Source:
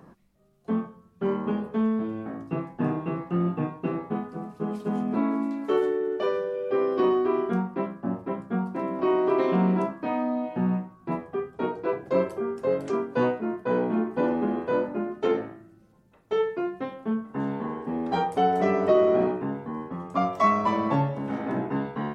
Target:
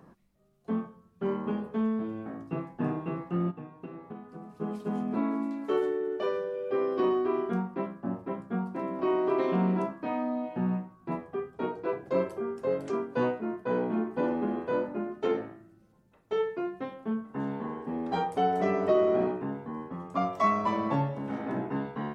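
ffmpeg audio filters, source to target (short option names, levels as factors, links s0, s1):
-filter_complex "[0:a]asplit=3[s0][s1][s2];[s0]afade=t=out:st=3.5:d=0.02[s3];[s1]acompressor=threshold=0.0158:ratio=5,afade=t=in:st=3.5:d=0.02,afade=t=out:st=4.59:d=0.02[s4];[s2]afade=t=in:st=4.59:d=0.02[s5];[s3][s4][s5]amix=inputs=3:normalize=0,volume=0.631"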